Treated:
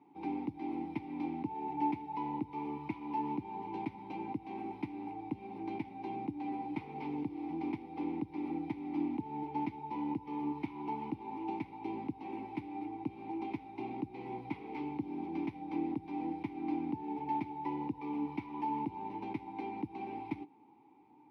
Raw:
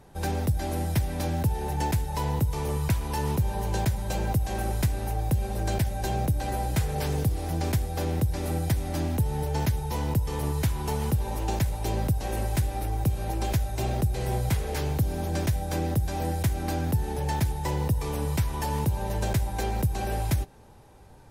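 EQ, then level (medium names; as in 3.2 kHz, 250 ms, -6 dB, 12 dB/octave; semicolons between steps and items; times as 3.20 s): boxcar filter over 6 samples; vowel filter u; high-pass 160 Hz 12 dB/octave; +4.5 dB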